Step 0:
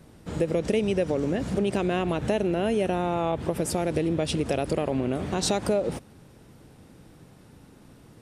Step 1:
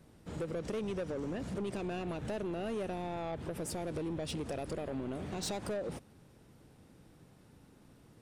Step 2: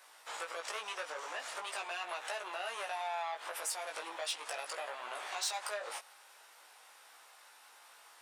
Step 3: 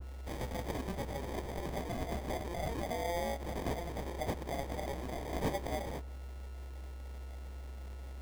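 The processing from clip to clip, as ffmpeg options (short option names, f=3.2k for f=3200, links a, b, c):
-af "asoftclip=type=tanh:threshold=-23dB,volume=-8.5dB"
-af "highpass=f=840:w=0.5412,highpass=f=840:w=1.3066,acompressor=threshold=-51dB:ratio=2,flanger=delay=16.5:depth=3:speed=0.42,volume=15dB"
-af "aeval=exprs='val(0)+0.00631*sin(2*PI*4200*n/s)':c=same,acrusher=samples=32:mix=1:aa=0.000001,adynamicequalizer=threshold=0.002:dfrequency=1600:dqfactor=0.7:tfrequency=1600:tqfactor=0.7:attack=5:release=100:ratio=0.375:range=2:mode=cutabove:tftype=highshelf,volume=2.5dB"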